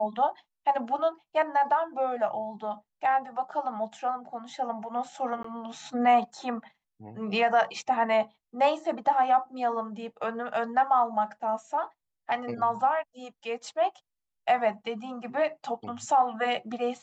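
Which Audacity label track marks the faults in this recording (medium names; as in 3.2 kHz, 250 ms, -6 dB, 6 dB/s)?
5.430000	5.440000	dropout 14 ms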